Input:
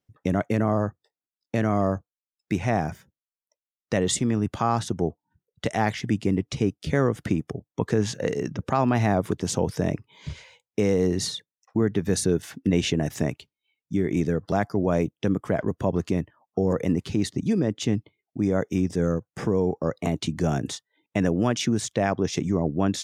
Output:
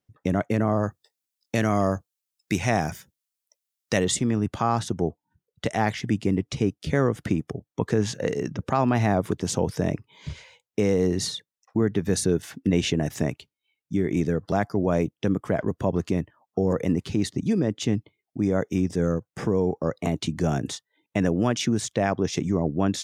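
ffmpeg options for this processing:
-filter_complex "[0:a]asettb=1/sr,asplit=3[s0][s1][s2];[s0]atrim=end=0.834[s3];[s1]atrim=start=0.83:end=4.05,asetpts=PTS-STARTPTS,afade=t=in:d=0.004:c=qsin,afade=t=out:st=3.216:d=0.004:c=qsin,highshelf=f=2700:g=12[s4];[s2]atrim=start=4.046[s5];[s3][s4]acrossfade=d=0.004:c1=hsin:c2=qsin[s6];[s6][s5]acrossfade=d=0.004:c1=qsin:c2=hsin"

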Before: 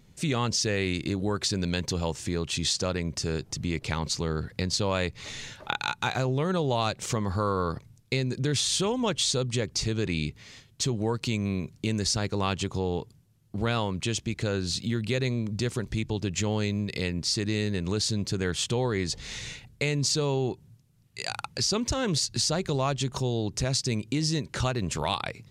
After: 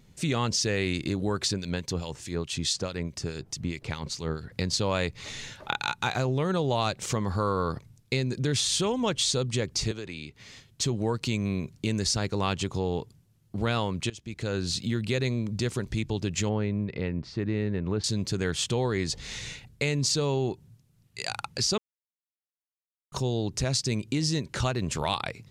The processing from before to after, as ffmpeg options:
-filter_complex "[0:a]asettb=1/sr,asplit=3[s0][s1][s2];[s0]atrim=end=1.534[s3];[s1]atrim=start=1.53:end=4.52,asetpts=PTS-STARTPTS,afade=t=in:d=0.004:c=qsin,afade=t=out:st=2.986:d=0.004:c=qsin,acrossover=split=2100[s4][s5];[s4]aeval=exprs='val(0)*(1-0.7/2+0.7/2*cos(2*PI*4.7*n/s))':c=same[s6];[s5]aeval=exprs='val(0)*(1-0.7/2-0.7/2*cos(2*PI*4.7*n/s))':c=same[s7];[s6][s7]amix=inputs=2:normalize=0[s8];[s2]atrim=start=4.516[s9];[s3][s8]acrossfade=d=0.004:c1=hsin:c2=qsin[s10];[s10][s9]acrossfade=d=0.004:c1=qsin:c2=hsin,asettb=1/sr,asplit=3[s11][s12][s13];[s11]atrim=end=9.914[s14];[s12]atrim=start=9.91:end=10.4,asetpts=PTS-STARTPTS,afade=t=in:d=0.004:c=qsin,afade=t=out:st=0.486:d=0.004:c=qsin,acrossover=split=330|5000[s15][s16][s17];[s15]acompressor=threshold=0.00631:ratio=4[s18];[s16]acompressor=threshold=0.0126:ratio=4[s19];[s17]acompressor=threshold=0.00141:ratio=4[s20];[s18][s19][s20]amix=inputs=3:normalize=0[s21];[s13]atrim=start=10.396[s22];[s14][s21]acrossfade=d=0.004:c1=hsin:c2=qsin[s23];[s23][s22]acrossfade=d=0.004:c1=qsin:c2=hsin,asettb=1/sr,asplit=3[s24][s25][s26];[s24]atrim=end=16.494[s27];[s25]atrim=start=16.49:end=18.04,asetpts=PTS-STARTPTS,afade=t=in:d=0.004:c=qsin,afade=t=out:st=1.546:d=0.004:c=qsin,lowpass=1700[s28];[s26]atrim=start=18.036[s29];[s27][s28]acrossfade=d=0.004:c1=hsin:c2=qsin[s30];[s30][s29]acrossfade=d=0.004:c1=qsin:c2=hsin,asplit=4[s31][s32][s33][s34];[s31]atrim=end=14.1,asetpts=PTS-STARTPTS,afade=t=out:st=14.096:d=0.004:c=hsin:silence=0.0891251[s35];[s32]atrim=start=14.1:end=21.78,asetpts=PTS-STARTPTS,afade=t=in:d=0.51:silence=0.0891251,afade=t=out:st=7.676:d=0.004:c=hsin[s36];[s33]atrim=start=21.78:end=23.12,asetpts=PTS-STARTPTS,volume=0[s37];[s34]atrim=start=23.12,asetpts=PTS-STARTPTS,afade=t=in:d=0.004:c=hsin[s38];[s35][s36][s37][s38]concat=n=4:v=0:a=1"

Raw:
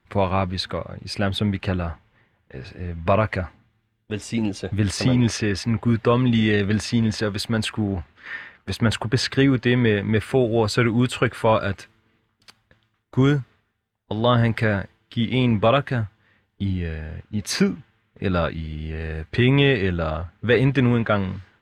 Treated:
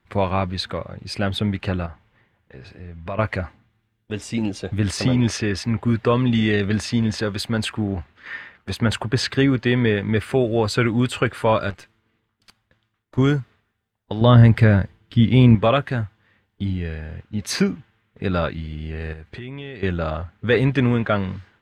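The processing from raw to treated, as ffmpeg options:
-filter_complex "[0:a]asettb=1/sr,asplit=3[s0][s1][s2];[s0]atrim=end=1.864[s3];[s1]atrim=start=1.86:end=3.19,asetpts=PTS-STARTPTS,afade=t=in:d=0.004:c=qsin,afade=t=out:st=1.326:d=0.004:c=qsin,acompressor=threshold=0.00631:ratio=1.5:attack=3.2:release=140:knee=1:detection=peak[s4];[s2]atrim=start=3.186[s5];[s3][s4]acrossfade=d=0.004:c1=hsin:c2=qsin[s6];[s6][s5]acrossfade=d=0.004:c1=qsin:c2=hsin,asettb=1/sr,asplit=3[s7][s8][s9];[s7]atrim=end=11.704[s10];[s8]atrim=start=11.7:end=13.18,asetpts=PTS-STARTPTS,afade=t=in:d=0.004:c=qsin,afade=t=out:st=1.476:d=0.004:c=qsin,aeval=exprs='(tanh(35.5*val(0)+0.7)-tanh(0.7))/35.5':c=same[s11];[s9]atrim=start=13.176[s12];[s10][s11]acrossfade=d=0.004:c1=hsin:c2=qsin[s13];[s13][s12]acrossfade=d=0.004:c1=qsin:c2=hsin,asettb=1/sr,asplit=3[s14][s15][s16];[s14]atrim=end=14.214[s17];[s15]atrim=start=14.21:end=15.55,asetpts=PTS-STARTPTS,afade=t=in:d=0.004:c=qsin,afade=t=out:st=1.336:d=0.004:c=qsin,lowshelf=f=250:g=11.5[s18];[s16]atrim=start=15.546[s19];[s17][s18]acrossfade=d=0.004:c1=hsin:c2=qsin[s20];[s20][s19]acrossfade=d=0.004:c1=qsin:c2=hsin,asettb=1/sr,asplit=3[s21][s22][s23];[s21]atrim=end=19.134[s24];[s22]atrim=start=19.13:end=19.83,asetpts=PTS-STARTPTS,afade=t=in:d=0.004:c=qsin,afade=t=out:st=0.696:d=0.004:c=qsin,acompressor=threshold=0.02:ratio=4:attack=3.2:release=140:knee=1:detection=peak[s25];[s23]atrim=start=19.826[s26];[s24][s25]acrossfade=d=0.004:c1=hsin:c2=qsin[s27];[s27][s26]acrossfade=d=0.004:c1=qsin:c2=hsin"

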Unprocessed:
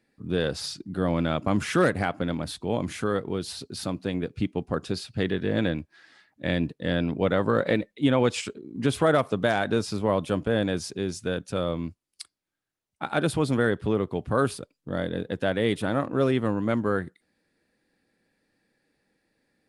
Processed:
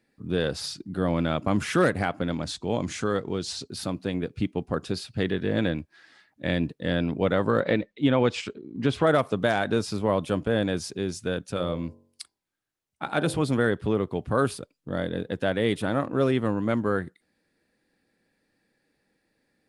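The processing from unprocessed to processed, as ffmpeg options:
-filter_complex "[0:a]asettb=1/sr,asplit=3[s0][s1][s2];[s0]atrim=end=2.314[s3];[s1]atrim=start=2.31:end=3.68,asetpts=PTS-STARTPTS,afade=t=in:d=0.004:c=qsin,afade=t=out:st=1.366:d=0.004:c=qsin,lowpass=f=6900:t=q:w=2.1[s4];[s2]atrim=start=3.676[s5];[s3][s4]acrossfade=d=0.004:c1=hsin:c2=qsin[s6];[s6][s5]acrossfade=d=0.004:c1=qsin:c2=hsin,asettb=1/sr,asplit=3[s7][s8][s9];[s7]atrim=end=7.604[s10];[s8]atrim=start=7.6:end=9.07,asetpts=PTS-STARTPTS,afade=t=in:d=0.004:c=qsin,afade=t=out:st=1.466:d=0.004:c=qsin,lowpass=5100[s11];[s9]atrim=start=9.066[s12];[s10][s11]acrossfade=d=0.004:c1=hsin:c2=qsin[s13];[s13][s12]acrossfade=d=0.004:c1=qsin:c2=hsin,asettb=1/sr,asplit=3[s14][s15][s16];[s14]atrim=end=11.544[s17];[s15]atrim=start=11.54:end=13.43,asetpts=PTS-STARTPTS,afade=t=in:d=0.004:c=qsin,afade=t=out:st=1.886:d=0.004:c=qsin,bandreject=f=46.94:t=h:w=4,bandreject=f=93.88:t=h:w=4,bandreject=f=140.82:t=h:w=4,bandreject=f=187.76:t=h:w=4,bandreject=f=234.7:t=h:w=4,bandreject=f=281.64:t=h:w=4,bandreject=f=328.58:t=h:w=4,bandreject=f=375.52:t=h:w=4,bandreject=f=422.46:t=h:w=4,bandreject=f=469.4:t=h:w=4,bandreject=f=516.34:t=h:w=4,bandreject=f=563.28:t=h:w=4,bandreject=f=610.22:t=h:w=4,bandreject=f=657.16:t=h:w=4,bandreject=f=704.1:t=h:w=4,bandreject=f=751.04:t=h:w=4,bandreject=f=797.98:t=h:w=4,bandreject=f=844.92:t=h:w=4,bandreject=f=891.86:t=h:w=4,bandreject=f=938.8:t=h:w=4,bandreject=f=985.74:t=h:w=4,bandreject=f=1032.68:t=h:w=4[s18];[s16]atrim=start=13.426[s19];[s17][s18]acrossfade=d=0.004:c1=hsin:c2=qsin[s20];[s20][s19]acrossfade=d=0.004:c1=qsin:c2=hsin"

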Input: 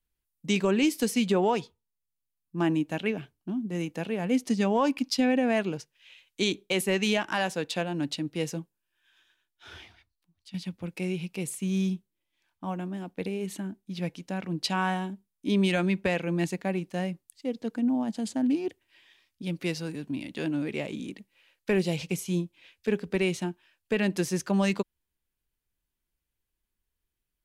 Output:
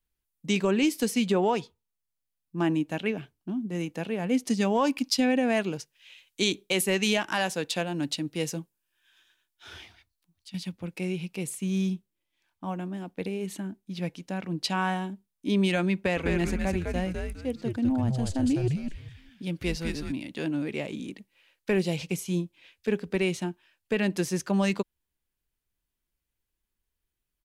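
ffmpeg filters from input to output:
-filter_complex "[0:a]asettb=1/sr,asplit=3[s0][s1][s2];[s0]atrim=end=4.474[s3];[s1]atrim=start=4.47:end=10.72,asetpts=PTS-STARTPTS,afade=t=in:d=0.004:c=qsin,afade=t=out:st=6.246:d=0.004:c=qsin,highshelf=f=4200:g=6[s4];[s2]atrim=start=10.716[s5];[s3][s4]acrossfade=d=0.004:c1=hsin:c2=qsin[s6];[s6][s5]acrossfade=d=0.004:c1=qsin:c2=hsin,asplit=3[s7][s8][s9];[s7]afade=t=out:st=16.16:d=0.02[s10];[s8]asplit=5[s11][s12][s13][s14][s15];[s12]adelay=204,afreqshift=-130,volume=0.708[s16];[s13]adelay=408,afreqshift=-260,volume=0.211[s17];[s14]adelay=612,afreqshift=-390,volume=0.0638[s18];[s15]adelay=816,afreqshift=-520,volume=0.0191[s19];[s11][s16][s17][s18][s19]amix=inputs=5:normalize=0,afade=t=in:st=16.16:d=0.02,afade=t=out:st=20.11:d=0.02[s20];[s9]afade=t=in:st=20.11:d=0.02[s21];[s10][s20][s21]amix=inputs=3:normalize=0"

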